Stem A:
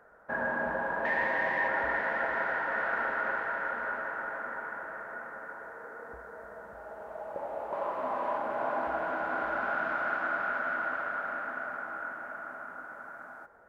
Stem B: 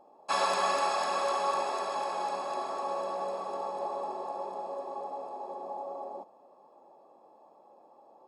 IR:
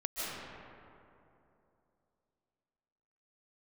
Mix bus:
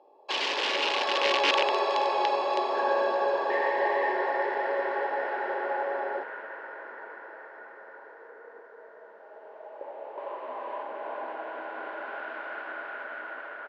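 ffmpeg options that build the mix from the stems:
-filter_complex "[0:a]adelay=2450,volume=-1.5dB[a];[1:a]aeval=exprs='(mod(14.1*val(0)+1,2)-1)/14.1':c=same,dynaudnorm=f=140:g=17:m=7.5dB,volume=2dB[b];[a][b]amix=inputs=2:normalize=0,highpass=f=340:w=0.5412,highpass=f=340:w=1.3066,equalizer=f=400:t=q:w=4:g=4,equalizer=f=710:t=q:w=4:g=-5,equalizer=f=1.3k:t=q:w=4:g=-10,equalizer=f=2.9k:t=q:w=4:g=4,lowpass=f=4.5k:w=0.5412,lowpass=f=4.5k:w=1.3066"

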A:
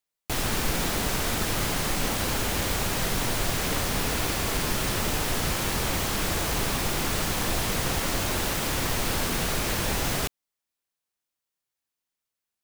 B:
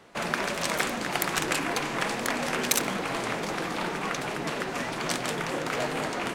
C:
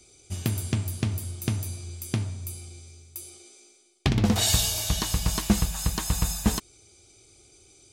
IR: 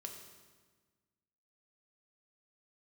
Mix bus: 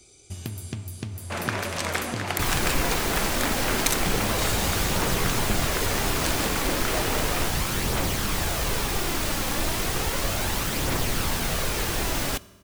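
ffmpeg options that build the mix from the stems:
-filter_complex "[0:a]aphaser=in_gain=1:out_gain=1:delay=3.8:decay=0.31:speed=0.34:type=triangular,adelay=2100,volume=-1.5dB,asplit=2[a][b];[b]volume=-10dB[c];[1:a]adelay=1150,volume=-0.5dB[d];[2:a]acompressor=threshold=-36dB:ratio=2.5,volume=0.5dB,asplit=2[e][f];[f]volume=-12dB[g];[3:a]atrim=start_sample=2205[h];[c][g]amix=inputs=2:normalize=0[i];[i][h]afir=irnorm=-1:irlink=0[j];[a][d][e][j]amix=inputs=4:normalize=0"

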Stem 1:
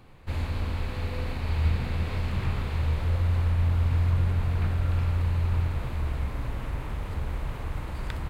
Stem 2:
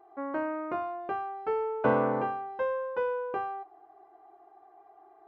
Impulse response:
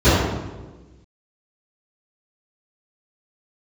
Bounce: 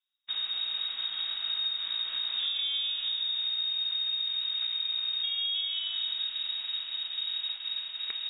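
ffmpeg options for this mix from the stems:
-filter_complex "[0:a]volume=-2.5dB[a];[1:a]tiltshelf=f=1.1k:g=8.5,adelay=2200,volume=-7.5dB,asplit=3[b][c][d];[b]atrim=end=2.91,asetpts=PTS-STARTPTS,afade=t=out:st=2.906:d=0.004:c=hsin[e];[c]atrim=start=2.91:end=5.23,asetpts=PTS-STARTPTS,volume=0[f];[d]atrim=start=5.23,asetpts=PTS-STARTPTS,afade=t=in:d=0.004:c=hsin[g];[e][f][g]concat=n=3:v=0:a=1,asplit=2[h][i];[i]volume=-21dB[j];[2:a]atrim=start_sample=2205[k];[j][k]afir=irnorm=-1:irlink=0[l];[a][h][l]amix=inputs=3:normalize=0,agate=range=-33dB:threshold=-31dB:ratio=3:detection=peak,lowpass=f=3.2k:t=q:w=0.5098,lowpass=f=3.2k:t=q:w=0.6013,lowpass=f=3.2k:t=q:w=0.9,lowpass=f=3.2k:t=q:w=2.563,afreqshift=-3800,acompressor=threshold=-29dB:ratio=6"

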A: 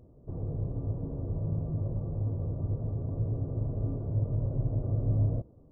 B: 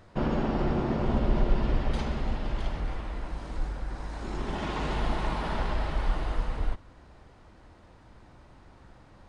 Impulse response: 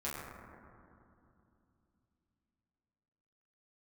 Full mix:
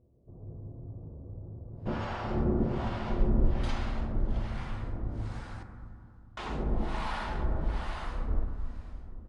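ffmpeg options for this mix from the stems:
-filter_complex "[0:a]lowpass=1k,asoftclip=type=tanh:threshold=-29.5dB,volume=-13dB,asplit=2[a][b];[b]volume=-4dB[c];[1:a]acrossover=split=640[d][e];[d]aeval=exprs='val(0)*(1-1/2+1/2*cos(2*PI*1.2*n/s))':c=same[f];[e]aeval=exprs='val(0)*(1-1/2-1/2*cos(2*PI*1.2*n/s))':c=same[g];[f][g]amix=inputs=2:normalize=0,adelay=1700,volume=-2dB,asplit=3[h][i][j];[h]atrim=end=5.63,asetpts=PTS-STARTPTS,afade=t=out:st=5.626:d=0.004:c=hsin[k];[i]atrim=start=5.63:end=6.37,asetpts=PTS-STARTPTS,volume=0[l];[j]atrim=start=6.37,asetpts=PTS-STARTPTS,afade=t=in:d=0.004:c=hsin[m];[k][l][m]concat=n=3:v=0:a=1,asplit=3[n][o][p];[o]volume=-6.5dB[q];[p]volume=-23dB[r];[2:a]atrim=start_sample=2205[s];[c][q]amix=inputs=2:normalize=0[t];[t][s]afir=irnorm=-1:irlink=0[u];[r]aecho=0:1:281|562|843|1124|1405|1686|1967|2248:1|0.54|0.292|0.157|0.085|0.0459|0.0248|0.0134[v];[a][n][u][v]amix=inputs=4:normalize=0"

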